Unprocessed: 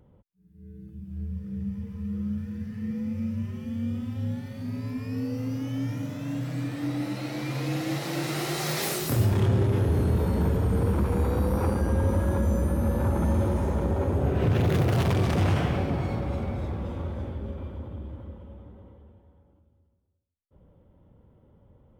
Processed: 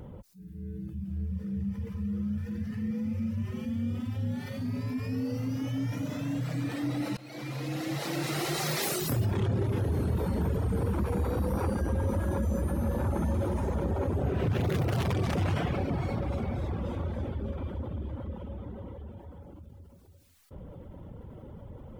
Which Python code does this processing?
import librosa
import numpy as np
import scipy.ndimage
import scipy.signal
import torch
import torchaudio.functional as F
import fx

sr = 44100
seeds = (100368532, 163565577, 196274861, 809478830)

y = fx.edit(x, sr, fx.fade_in_from(start_s=7.17, length_s=1.31, floor_db=-23.0), tone=tone)
y = fx.dereverb_blind(y, sr, rt60_s=0.75)
y = fx.env_flatten(y, sr, amount_pct=50)
y = F.gain(torch.from_numpy(y), -5.5).numpy()